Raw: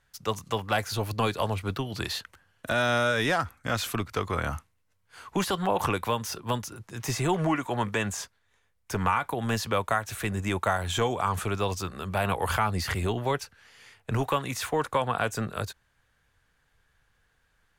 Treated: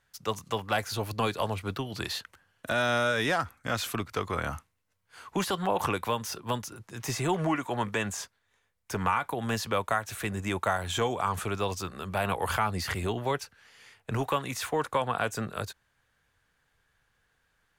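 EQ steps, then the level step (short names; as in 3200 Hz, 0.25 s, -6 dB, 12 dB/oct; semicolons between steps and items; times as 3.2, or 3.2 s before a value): low shelf 78 Hz -7 dB; -1.5 dB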